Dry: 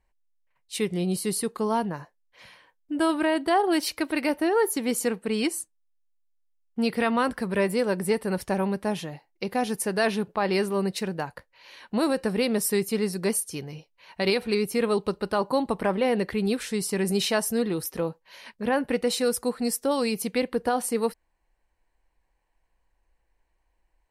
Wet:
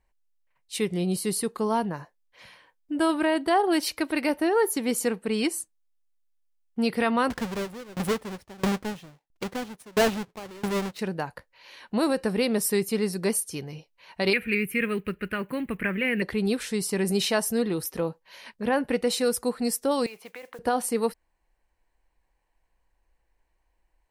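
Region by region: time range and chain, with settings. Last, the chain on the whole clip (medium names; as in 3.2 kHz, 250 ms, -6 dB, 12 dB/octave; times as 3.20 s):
7.30–10.99 s: square wave that keeps the level + treble shelf 8.6 kHz -6 dB + sawtooth tremolo in dB decaying 1.5 Hz, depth 27 dB
14.33–16.22 s: block-companded coder 7-bit + FFT filter 200 Hz 0 dB, 470 Hz -7 dB, 870 Hz -18 dB, 1.7 kHz +8 dB, 2.5 kHz +10 dB, 3.8 kHz -13 dB, 5.6 kHz -18 dB, 13 kHz +3 dB
20.06–20.59 s: three-band isolator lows -21 dB, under 540 Hz, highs -24 dB, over 3.1 kHz + compression 10:1, threshold -37 dBFS + modulation noise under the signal 17 dB
whole clip: none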